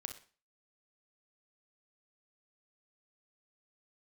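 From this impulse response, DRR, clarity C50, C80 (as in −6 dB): 6.0 dB, 8.5 dB, 15.0 dB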